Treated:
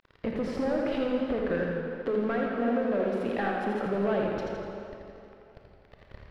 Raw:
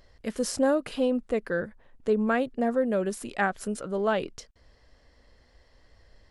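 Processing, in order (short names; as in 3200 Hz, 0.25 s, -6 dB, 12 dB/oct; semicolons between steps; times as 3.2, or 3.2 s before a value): 1.61–3.86 HPF 220 Hz 12 dB/oct; sample leveller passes 2; compressor 6:1, threshold -36 dBFS, peak gain reduction 18 dB; sample leveller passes 2; sample gate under -39.5 dBFS; air absorption 370 m; reverb RT60 2.9 s, pre-delay 24 ms, DRR 1.5 dB; warbling echo 83 ms, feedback 59%, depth 73 cents, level -5 dB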